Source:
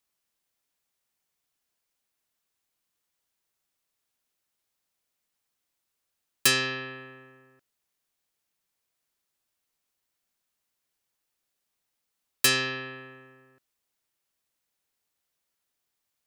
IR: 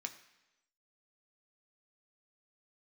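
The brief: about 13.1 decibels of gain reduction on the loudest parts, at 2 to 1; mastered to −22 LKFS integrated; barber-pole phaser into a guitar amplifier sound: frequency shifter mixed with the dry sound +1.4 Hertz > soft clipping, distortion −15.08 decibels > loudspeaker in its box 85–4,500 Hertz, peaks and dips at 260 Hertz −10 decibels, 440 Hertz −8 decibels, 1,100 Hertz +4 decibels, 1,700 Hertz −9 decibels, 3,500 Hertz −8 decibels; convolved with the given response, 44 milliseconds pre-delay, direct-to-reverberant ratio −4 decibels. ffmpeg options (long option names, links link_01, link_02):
-filter_complex "[0:a]acompressor=threshold=-44dB:ratio=2,asplit=2[link_01][link_02];[1:a]atrim=start_sample=2205,adelay=44[link_03];[link_02][link_03]afir=irnorm=-1:irlink=0,volume=6dB[link_04];[link_01][link_04]amix=inputs=2:normalize=0,asplit=2[link_05][link_06];[link_06]afreqshift=1.4[link_07];[link_05][link_07]amix=inputs=2:normalize=1,asoftclip=threshold=-27dB,highpass=85,equalizer=frequency=260:width_type=q:width=4:gain=-10,equalizer=frequency=440:width_type=q:width=4:gain=-8,equalizer=frequency=1100:width_type=q:width=4:gain=4,equalizer=frequency=1700:width_type=q:width=4:gain=-9,equalizer=frequency=3500:width_type=q:width=4:gain=-8,lowpass=frequency=4500:width=0.5412,lowpass=frequency=4500:width=1.3066,volume=23dB"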